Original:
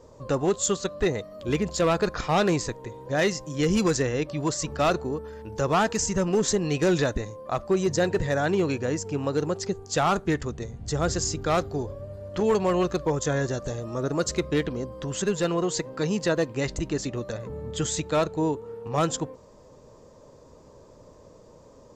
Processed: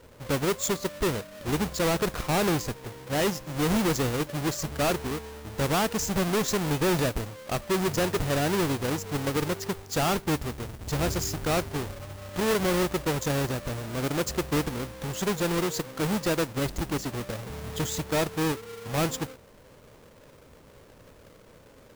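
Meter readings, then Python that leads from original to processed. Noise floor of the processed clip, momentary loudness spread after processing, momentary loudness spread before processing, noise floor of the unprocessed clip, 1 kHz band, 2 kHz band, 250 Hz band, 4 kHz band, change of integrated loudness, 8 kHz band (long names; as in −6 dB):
−53 dBFS, 9 LU, 9 LU, −52 dBFS, −2.0 dB, 0.0 dB, −1.5 dB, +1.0 dB, −1.5 dB, −2.0 dB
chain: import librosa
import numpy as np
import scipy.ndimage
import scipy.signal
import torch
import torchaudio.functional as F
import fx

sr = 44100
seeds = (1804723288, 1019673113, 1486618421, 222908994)

y = fx.halfwave_hold(x, sr)
y = fx.mod_noise(y, sr, seeds[0], snr_db=18)
y = F.gain(torch.from_numpy(y), -6.0).numpy()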